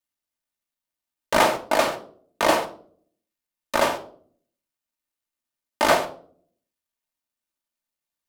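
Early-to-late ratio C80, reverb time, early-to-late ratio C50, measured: 17.5 dB, 0.50 s, 13.0 dB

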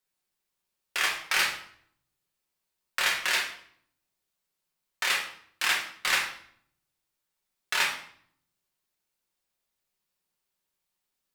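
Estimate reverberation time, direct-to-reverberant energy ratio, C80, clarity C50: 0.60 s, −2.5 dB, 10.5 dB, 6.5 dB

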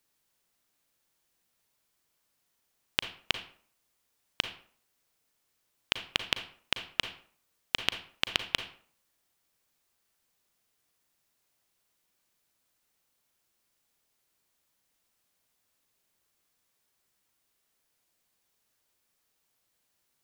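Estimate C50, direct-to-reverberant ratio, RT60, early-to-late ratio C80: 10.5 dB, 8.5 dB, 0.50 s, 15.0 dB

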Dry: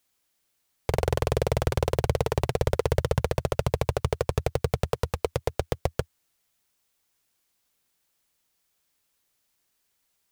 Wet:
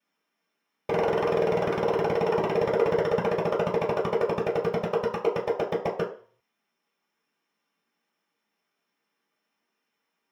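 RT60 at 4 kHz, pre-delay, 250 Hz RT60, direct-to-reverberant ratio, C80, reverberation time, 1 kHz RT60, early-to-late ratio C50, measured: 0.45 s, 3 ms, 0.40 s, −15.0 dB, 12.5 dB, 0.45 s, 0.50 s, 8.0 dB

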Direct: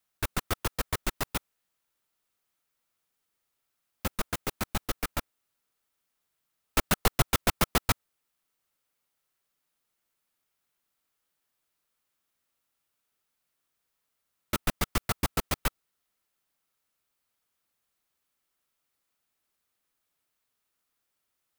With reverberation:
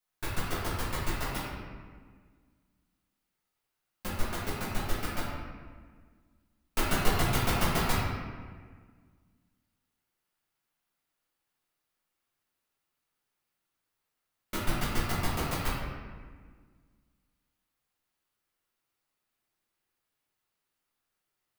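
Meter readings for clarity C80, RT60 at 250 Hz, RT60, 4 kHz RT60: 1.0 dB, 2.2 s, 1.6 s, 1.0 s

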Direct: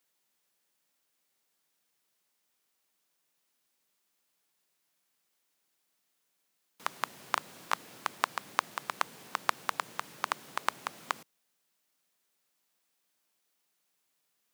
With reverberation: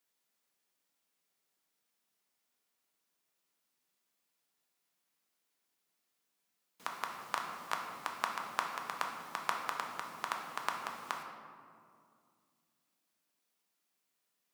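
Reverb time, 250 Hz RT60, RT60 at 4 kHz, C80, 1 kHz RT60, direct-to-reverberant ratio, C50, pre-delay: 2.3 s, 3.1 s, 1.1 s, 5.5 dB, 2.1 s, 1.0 dB, 4.0 dB, 3 ms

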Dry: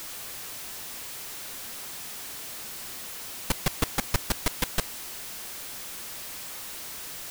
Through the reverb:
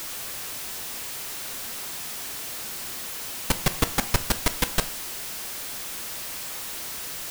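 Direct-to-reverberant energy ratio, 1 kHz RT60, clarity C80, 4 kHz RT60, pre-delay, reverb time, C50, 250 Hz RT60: 11.0 dB, 0.50 s, 19.5 dB, 0.50 s, 4 ms, 0.55 s, 16.5 dB, 0.55 s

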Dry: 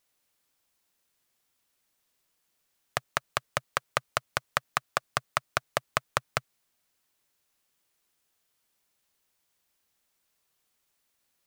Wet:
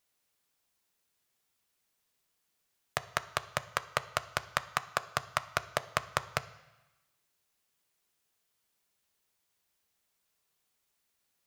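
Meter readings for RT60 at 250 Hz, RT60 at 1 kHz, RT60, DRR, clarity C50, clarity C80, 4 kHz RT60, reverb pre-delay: 1.0 s, 1.1 s, 1.0 s, 11.5 dB, 16.5 dB, 18.5 dB, 1.1 s, 3 ms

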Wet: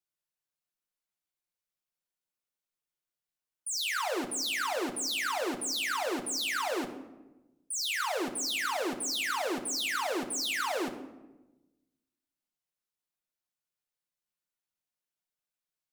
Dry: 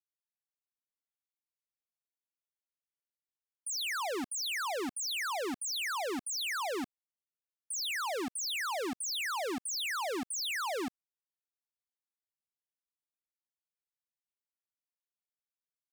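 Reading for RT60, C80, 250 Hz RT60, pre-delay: 1.1 s, 12.5 dB, 1.4 s, 6 ms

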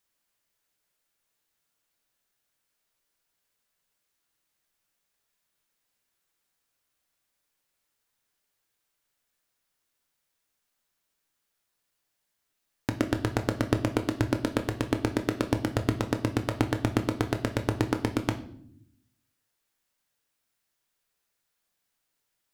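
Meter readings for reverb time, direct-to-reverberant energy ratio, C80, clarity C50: 0.65 s, 6.0 dB, 17.0 dB, 13.0 dB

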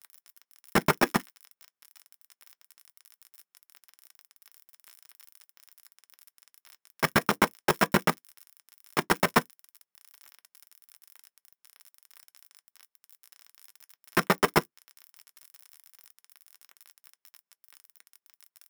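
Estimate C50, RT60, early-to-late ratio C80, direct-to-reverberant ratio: 45.0 dB, non-exponential decay, 60.0 dB, 11.5 dB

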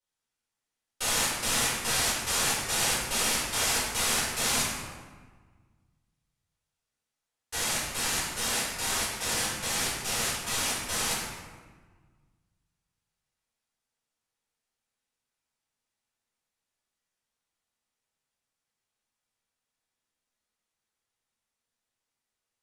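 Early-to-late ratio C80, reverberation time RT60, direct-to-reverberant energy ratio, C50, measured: 3.0 dB, 1.4 s, −9.0 dB, 0.0 dB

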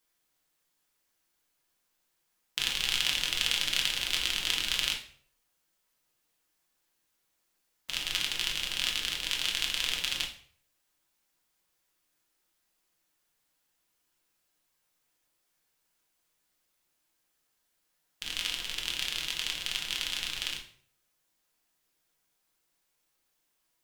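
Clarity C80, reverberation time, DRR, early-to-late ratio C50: 13.5 dB, 0.55 s, −0.5 dB, 9.0 dB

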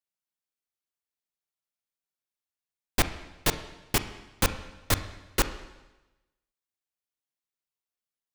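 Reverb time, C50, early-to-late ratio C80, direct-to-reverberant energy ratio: 1.0 s, 12.0 dB, 14.0 dB, 10.0 dB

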